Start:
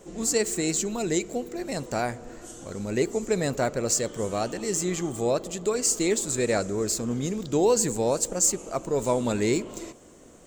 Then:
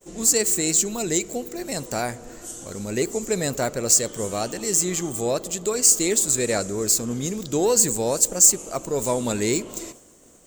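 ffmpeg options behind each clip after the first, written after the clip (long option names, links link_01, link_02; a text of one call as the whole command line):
ffmpeg -i in.wav -af "acontrast=89,aemphasis=mode=production:type=50kf,agate=range=-33dB:threshold=-36dB:ratio=3:detection=peak,volume=-6.5dB" out.wav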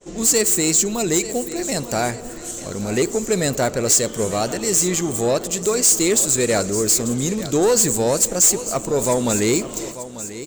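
ffmpeg -i in.wav -filter_complex "[0:a]acrossover=split=7900[link_01][link_02];[link_02]aeval=exprs='sgn(val(0))*max(abs(val(0))-0.00266,0)':channel_layout=same[link_03];[link_01][link_03]amix=inputs=2:normalize=0,aecho=1:1:891|1782|2673|3564:0.158|0.0634|0.0254|0.0101,asoftclip=type=tanh:threshold=-16dB,volume=6dB" out.wav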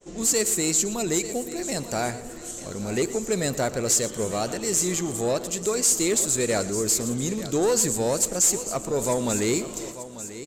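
ffmpeg -i in.wav -af "aecho=1:1:118:0.158,aresample=32000,aresample=44100,volume=-5.5dB" out.wav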